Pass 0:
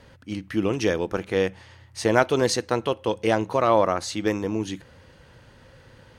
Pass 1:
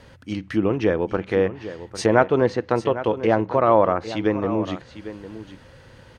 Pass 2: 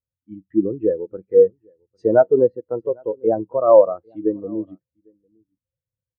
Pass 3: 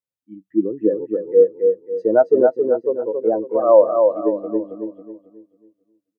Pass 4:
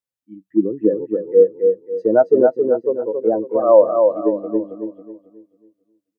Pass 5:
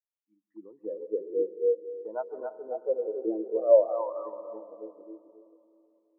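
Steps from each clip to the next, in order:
treble cut that deepens with the level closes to 1,700 Hz, closed at −21 dBFS; single-tap delay 801 ms −13.5 dB; level +3 dB
soft clipping −3 dBFS, distortion −25 dB; every bin expanded away from the loudest bin 2.5 to 1; level +3.5 dB
Chebyshev high-pass filter 250 Hz, order 2; on a send: repeating echo 273 ms, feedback 37%, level −4.5 dB
dynamic equaliser 160 Hz, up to +5 dB, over −30 dBFS, Q 0.83
LFO wah 0.53 Hz 350–1,100 Hz, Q 7; on a send at −13 dB: convolution reverb RT60 2.8 s, pre-delay 120 ms; on the sum: level −4 dB

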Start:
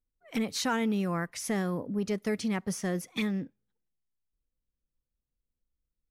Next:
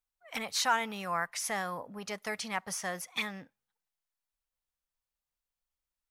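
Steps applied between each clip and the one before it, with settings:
low shelf with overshoot 520 Hz −14 dB, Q 1.5
level +2 dB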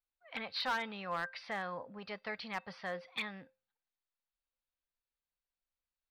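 elliptic low-pass filter 4,500 Hz, stop band 40 dB
tuned comb filter 520 Hz, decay 0.26 s, harmonics odd, mix 70%
hard clipping −35 dBFS, distortion −13 dB
level +6 dB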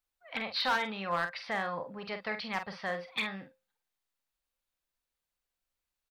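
double-tracking delay 46 ms −8 dB
level +5 dB

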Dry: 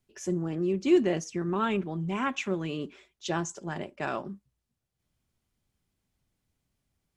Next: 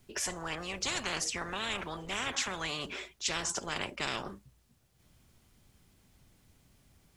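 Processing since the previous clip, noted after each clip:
every bin compressed towards the loudest bin 10 to 1
level −4.5 dB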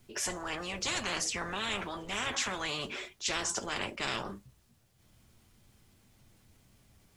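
transient designer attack −2 dB, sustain +2 dB
flanger 0.34 Hz, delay 8.7 ms, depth 1.1 ms, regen −48%
level +5 dB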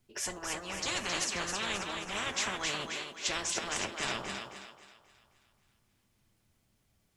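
feedback echo with a high-pass in the loop 267 ms, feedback 53%, high-pass 260 Hz, level −3.5 dB
expander for the loud parts 1.5 to 1, over −51 dBFS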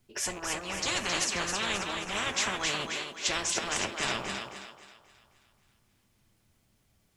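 loose part that buzzes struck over −51 dBFS, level −39 dBFS
level +3.5 dB

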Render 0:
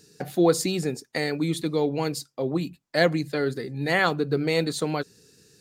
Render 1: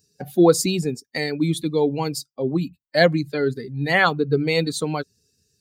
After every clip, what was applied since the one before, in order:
spectral dynamics exaggerated over time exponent 1.5
level +6.5 dB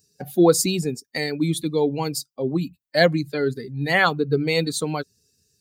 high-shelf EQ 7,300 Hz +6 dB
level −1 dB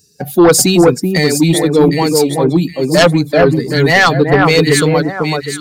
delay that swaps between a low-pass and a high-pass 382 ms, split 1,600 Hz, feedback 51%, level −3 dB
sine wavefolder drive 9 dB, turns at −1.5 dBFS
level −1 dB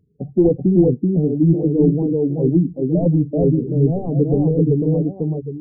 Gaussian smoothing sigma 20 samples
flanger 1.3 Hz, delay 0.6 ms, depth 4.3 ms, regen −74%
level +3.5 dB

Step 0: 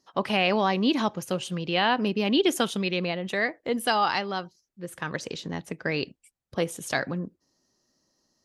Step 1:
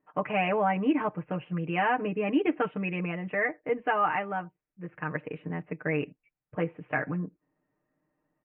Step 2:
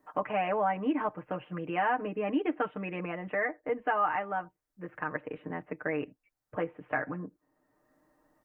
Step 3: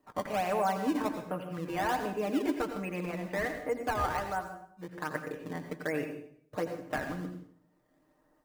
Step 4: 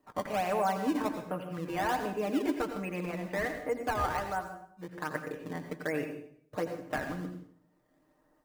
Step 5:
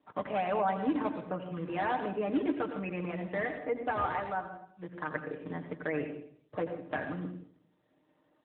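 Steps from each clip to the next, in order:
Butterworth low-pass 2,600 Hz 72 dB per octave; comb filter 6.6 ms, depth 93%; level −4.5 dB
graphic EQ with 15 bands 160 Hz −12 dB, 400 Hz −4 dB, 2,500 Hz −8 dB; multiband upward and downward compressor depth 40%
in parallel at −5.5 dB: sample-and-hold swept by an LFO 19×, swing 160% 1.3 Hz; on the sum: convolution reverb RT60 0.60 s, pre-delay 80 ms, DRR 6.5 dB; level −4.5 dB
no processing that can be heard
AMR narrowband 12.2 kbit/s 8,000 Hz

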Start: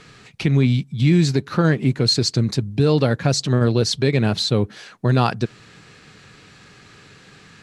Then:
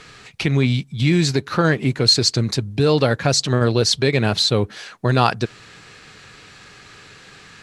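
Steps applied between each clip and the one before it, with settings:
parametric band 180 Hz −7 dB 2.2 octaves
level +4.5 dB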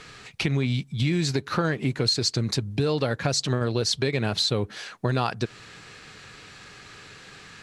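downward compressor 4 to 1, threshold −19 dBFS, peak gain reduction 8.5 dB
level −2 dB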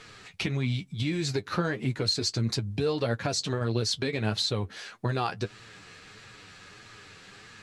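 flanger 1.6 Hz, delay 8.4 ms, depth 3.2 ms, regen +33%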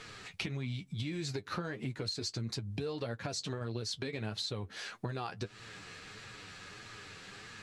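downward compressor 4 to 1, threshold −36 dBFS, peak gain reduction 12 dB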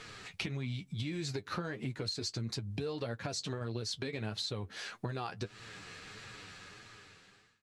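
fade-out on the ending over 1.26 s

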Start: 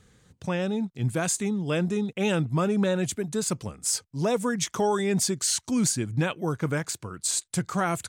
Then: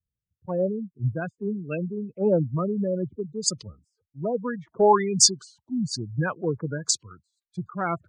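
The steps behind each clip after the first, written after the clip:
gate on every frequency bin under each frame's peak −15 dB strong
auto-filter low-pass sine 1.2 Hz 540–6,200 Hz
multiband upward and downward expander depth 100%
level −2 dB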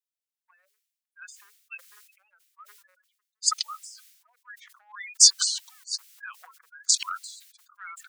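Bessel high-pass filter 2,700 Hz, order 8
level that may fall only so fast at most 62 dB per second
level +2 dB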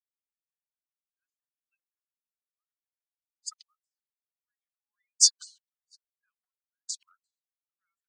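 expander for the loud parts 2.5 to 1, over −44 dBFS
level −2.5 dB

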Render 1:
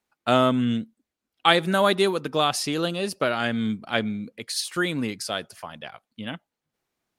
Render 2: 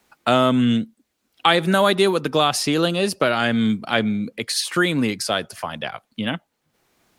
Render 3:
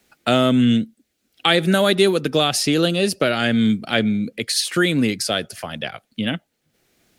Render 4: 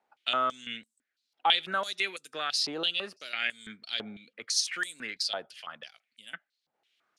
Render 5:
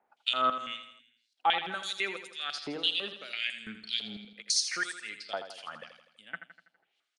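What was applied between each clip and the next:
in parallel at −0.5 dB: brickwall limiter −13 dBFS, peak gain reduction 11 dB; on the sum: multiband upward and downward compressor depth 40%
parametric band 1,000 Hz −11 dB 0.76 octaves; level +2.5 dB
band-pass on a step sequencer 6 Hz 870–8,000 Hz
two-band tremolo in antiphase 1.9 Hz, depth 100%, crossover 2,400 Hz; on a send: repeating echo 82 ms, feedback 52%, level −10 dB; on the sum: downsampling to 22,050 Hz; level +3.5 dB

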